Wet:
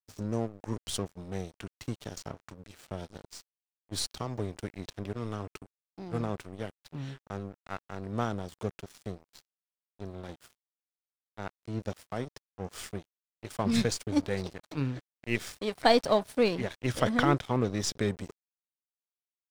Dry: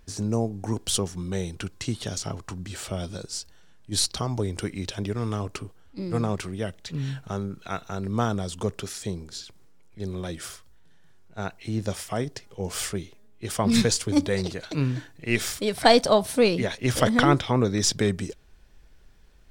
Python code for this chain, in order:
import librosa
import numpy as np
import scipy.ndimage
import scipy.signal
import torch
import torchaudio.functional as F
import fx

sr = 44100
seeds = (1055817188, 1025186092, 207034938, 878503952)

y = np.sign(x) * np.maximum(np.abs(x) - 10.0 ** (-34.5 / 20.0), 0.0)
y = fx.high_shelf(y, sr, hz=5000.0, db=-6.0)
y = F.gain(torch.from_numpy(y), -4.5).numpy()